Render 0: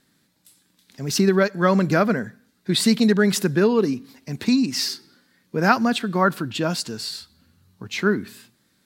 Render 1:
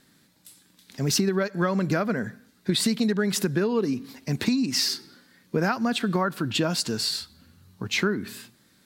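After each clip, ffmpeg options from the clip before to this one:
-af "acompressor=threshold=0.0631:ratio=12,volume=1.58"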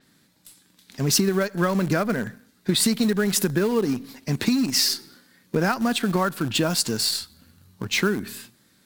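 -filter_complex "[0:a]asplit=2[s0][s1];[s1]acrusher=bits=5:dc=4:mix=0:aa=0.000001,volume=0.266[s2];[s0][s2]amix=inputs=2:normalize=0,adynamicequalizer=threshold=0.0112:dfrequency=7000:dqfactor=0.7:tfrequency=7000:tqfactor=0.7:attack=5:release=100:ratio=0.375:range=3.5:mode=boostabove:tftype=highshelf"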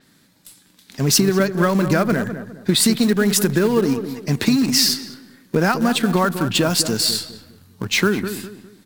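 -filter_complex "[0:a]asplit=2[s0][s1];[s1]adelay=204,lowpass=f=1400:p=1,volume=0.335,asplit=2[s2][s3];[s3]adelay=204,lowpass=f=1400:p=1,volume=0.35,asplit=2[s4][s5];[s5]adelay=204,lowpass=f=1400:p=1,volume=0.35,asplit=2[s6][s7];[s7]adelay=204,lowpass=f=1400:p=1,volume=0.35[s8];[s0][s2][s4][s6][s8]amix=inputs=5:normalize=0,volume=1.68"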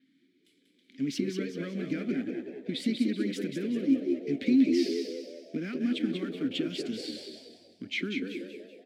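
-filter_complex "[0:a]asplit=3[s0][s1][s2];[s0]bandpass=f=270:t=q:w=8,volume=1[s3];[s1]bandpass=f=2290:t=q:w=8,volume=0.501[s4];[s2]bandpass=f=3010:t=q:w=8,volume=0.355[s5];[s3][s4][s5]amix=inputs=3:normalize=0,asplit=6[s6][s7][s8][s9][s10][s11];[s7]adelay=189,afreqshift=80,volume=0.501[s12];[s8]adelay=378,afreqshift=160,volume=0.207[s13];[s9]adelay=567,afreqshift=240,volume=0.0841[s14];[s10]adelay=756,afreqshift=320,volume=0.0347[s15];[s11]adelay=945,afreqshift=400,volume=0.0141[s16];[s6][s12][s13][s14][s15][s16]amix=inputs=6:normalize=0,volume=0.75"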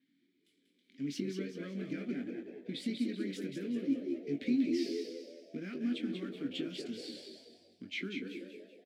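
-filter_complex "[0:a]asplit=2[s0][s1];[s1]adelay=21,volume=0.447[s2];[s0][s2]amix=inputs=2:normalize=0,volume=0.422"

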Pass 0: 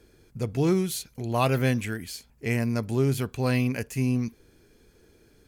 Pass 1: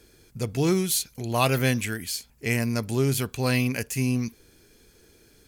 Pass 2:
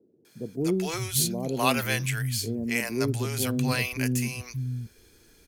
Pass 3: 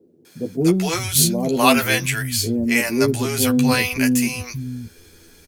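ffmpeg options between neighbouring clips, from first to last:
-af "highshelf=f=2400:g=9"
-filter_complex "[0:a]acrossover=split=160|510[s0][s1][s2];[s2]adelay=250[s3];[s0]adelay=580[s4];[s4][s1][s3]amix=inputs=3:normalize=0"
-filter_complex "[0:a]asplit=2[s0][s1];[s1]adelay=12,volume=0.631[s2];[s0][s2]amix=inputs=2:normalize=0,volume=2.37"

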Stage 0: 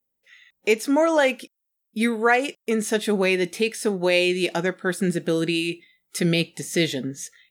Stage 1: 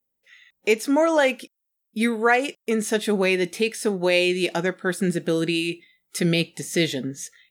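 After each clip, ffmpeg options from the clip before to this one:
-af anull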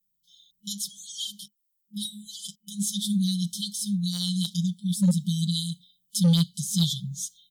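-af "afftfilt=real='re*(1-between(b*sr/4096,210,3000))':imag='im*(1-between(b*sr/4096,210,3000))':win_size=4096:overlap=0.75,asoftclip=type=hard:threshold=0.0944,aecho=1:1:5.8:0.86"

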